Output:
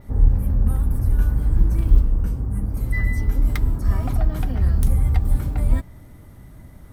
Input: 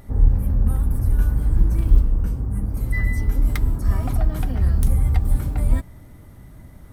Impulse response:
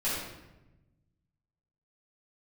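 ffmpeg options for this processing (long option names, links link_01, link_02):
-af "adynamicequalizer=threshold=0.00158:dfrequency=10000:dqfactor=1.1:tfrequency=10000:tqfactor=1.1:attack=5:release=100:ratio=0.375:range=2:mode=cutabove:tftype=bell"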